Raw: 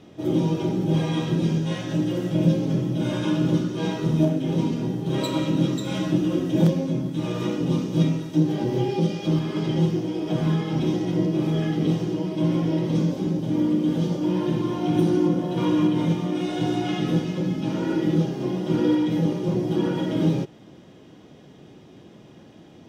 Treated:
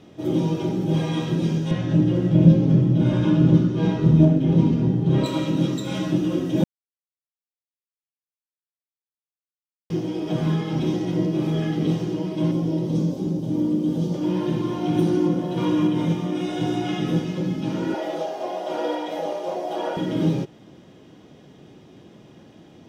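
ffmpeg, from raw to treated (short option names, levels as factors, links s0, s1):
-filter_complex "[0:a]asettb=1/sr,asplit=3[s0][s1][s2];[s0]atrim=end=1.714[s3];[s1]atrim=start=1.71:end=5.26,asetpts=PTS-STARTPTS,afade=t=in:d=0.004:c=qsin,afade=t=out:st=3.546:d=0.004:c=qsin,aemphasis=mode=reproduction:type=bsi[s4];[s2]atrim=start=5.256[s5];[s3][s4]acrossfade=d=0.004:c1=hsin:c2=qsin[s6];[s6][s5]acrossfade=d=0.004:c1=qsin:c2=hsin,asettb=1/sr,asplit=3[s7][s8][s9];[s7]atrim=end=12.514[s10];[s8]atrim=start=12.51:end=14.14,asetpts=PTS-STARTPTS,afade=t=in:d=0.004:c=qsin,afade=t=out:st=1.626:d=0.004:c=qsin,equalizer=f=1900:t=o:w=1.7:g=-10.5[s11];[s9]atrim=start=14.136[s12];[s10][s11]acrossfade=d=0.004:c1=hsin:c2=qsin[s13];[s13][s12]acrossfade=d=0.004:c1=qsin:c2=hsin,asettb=1/sr,asplit=3[s14][s15][s16];[s14]atrim=end=15.734[s17];[s15]atrim=start=15.73:end=17.3,asetpts=PTS-STARTPTS,afade=t=in:d=0.004:c=qsin,afade=t=out:st=1.566:d=0.004:c=qsin,bandreject=f=4300:w=12[s18];[s16]atrim=start=17.296[s19];[s17][s18]acrossfade=d=0.004:c1=hsin:c2=qsin[s20];[s20][s19]acrossfade=d=0.004:c1=qsin:c2=hsin,asettb=1/sr,asplit=3[s21][s22][s23];[s21]atrim=end=17.944[s24];[s22]atrim=start=17.94:end=19.97,asetpts=PTS-STARTPTS,afade=t=in:d=0.004:c=qsin,afade=t=out:st=2.026:d=0.004:c=qsin,highpass=f=660:t=q:w=6[s25];[s23]atrim=start=19.966[s26];[s24][s25]acrossfade=d=0.004:c1=hsin:c2=qsin[s27];[s27][s26]acrossfade=d=0.004:c1=qsin:c2=hsin,asplit=3[s28][s29][s30];[s28]atrim=end=6.64,asetpts=PTS-STARTPTS,afade=t=out:st=6.636:d=0.004:c=hsin[s31];[s29]atrim=start=6.64:end=9.9,asetpts=PTS-STARTPTS,volume=0[s32];[s30]atrim=start=9.9,asetpts=PTS-STARTPTS,afade=t=in:d=0.004:c=hsin[s33];[s31][s32][s33]concat=n=3:v=0:a=1"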